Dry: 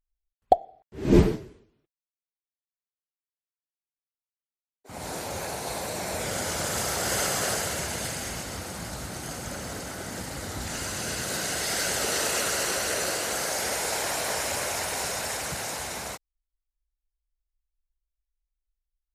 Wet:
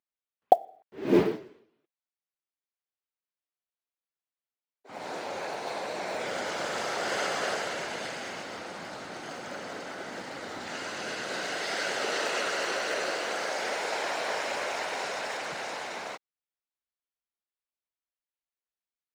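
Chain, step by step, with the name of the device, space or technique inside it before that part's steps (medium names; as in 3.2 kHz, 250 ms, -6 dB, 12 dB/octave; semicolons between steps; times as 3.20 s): early digital voice recorder (band-pass 300–3700 Hz; block-companded coder 7-bit)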